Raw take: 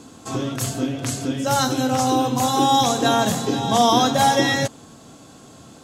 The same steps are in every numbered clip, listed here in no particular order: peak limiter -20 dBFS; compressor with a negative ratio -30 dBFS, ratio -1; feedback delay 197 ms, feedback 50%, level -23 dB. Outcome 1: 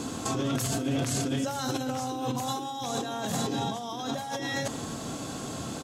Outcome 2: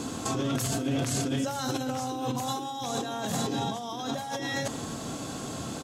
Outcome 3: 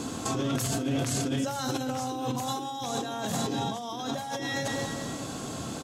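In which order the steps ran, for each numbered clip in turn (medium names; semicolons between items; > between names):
compressor with a negative ratio > feedback delay > peak limiter; compressor with a negative ratio > peak limiter > feedback delay; feedback delay > compressor with a negative ratio > peak limiter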